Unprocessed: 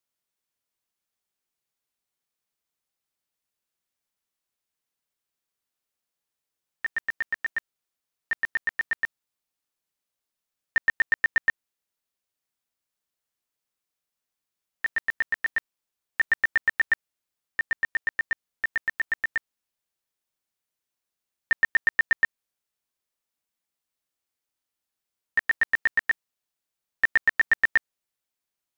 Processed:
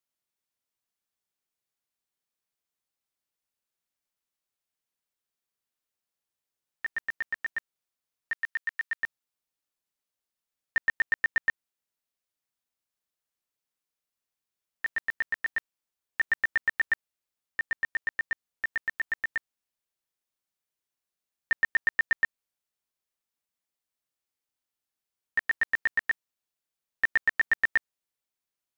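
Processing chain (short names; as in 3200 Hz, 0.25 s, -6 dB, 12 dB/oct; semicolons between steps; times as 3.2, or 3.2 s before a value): 8.32–9.03 HPF 1200 Hz 12 dB/oct; gain -3.5 dB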